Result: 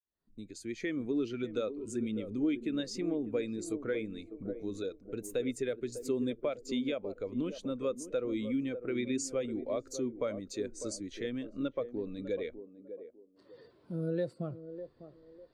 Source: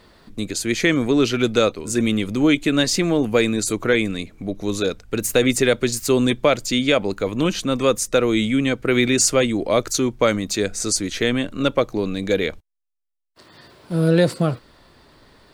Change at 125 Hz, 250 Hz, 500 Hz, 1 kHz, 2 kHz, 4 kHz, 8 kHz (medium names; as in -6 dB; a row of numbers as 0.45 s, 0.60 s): -19.0 dB, -14.5 dB, -15.0 dB, -22.0 dB, -22.0 dB, -23.0 dB, -21.5 dB